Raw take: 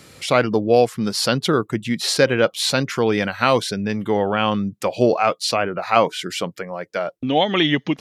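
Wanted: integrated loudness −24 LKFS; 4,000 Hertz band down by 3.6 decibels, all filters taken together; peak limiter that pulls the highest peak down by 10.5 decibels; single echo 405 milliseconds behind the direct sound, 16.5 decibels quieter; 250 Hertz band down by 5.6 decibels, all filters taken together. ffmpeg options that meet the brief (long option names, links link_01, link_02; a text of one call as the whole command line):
ffmpeg -i in.wav -af "equalizer=frequency=250:width_type=o:gain=-7.5,equalizer=frequency=4000:width_type=o:gain=-4.5,alimiter=limit=-13.5dB:level=0:latency=1,aecho=1:1:405:0.15,volume=1.5dB" out.wav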